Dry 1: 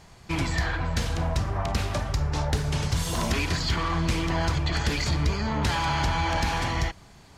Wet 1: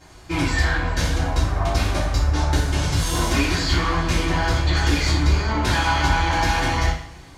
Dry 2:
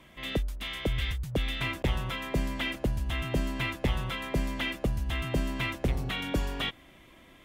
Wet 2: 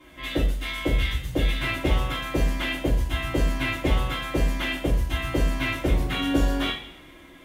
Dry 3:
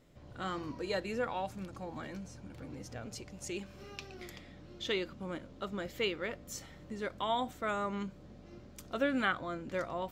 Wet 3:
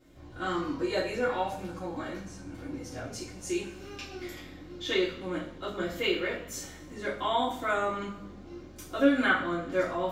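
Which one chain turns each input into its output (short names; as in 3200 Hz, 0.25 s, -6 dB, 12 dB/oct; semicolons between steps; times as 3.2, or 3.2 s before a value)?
notches 60/120/180 Hz; two-slope reverb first 0.45 s, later 1.5 s, from -18 dB, DRR -10 dB; gain -4.5 dB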